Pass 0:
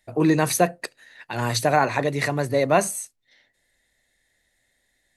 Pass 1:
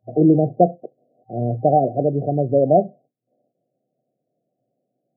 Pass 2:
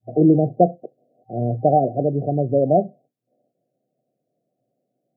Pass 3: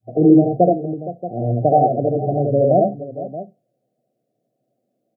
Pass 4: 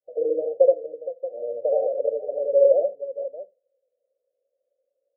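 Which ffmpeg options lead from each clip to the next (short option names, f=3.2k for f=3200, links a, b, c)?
-af "afftfilt=real='re*between(b*sr/4096,110,770)':imag='im*between(b*sr/4096,110,770)':win_size=4096:overlap=0.75,volume=5dB"
-af "adynamicequalizer=threshold=0.0562:dfrequency=600:dqfactor=0.94:tfrequency=600:tqfactor=0.94:attack=5:release=100:ratio=0.375:range=1.5:mode=cutabove:tftype=bell"
-af "aecho=1:1:73|82|466|629:0.668|0.596|0.188|0.211"
-af "asuperpass=centerf=520:order=4:qfactor=5.9,volume=3.5dB"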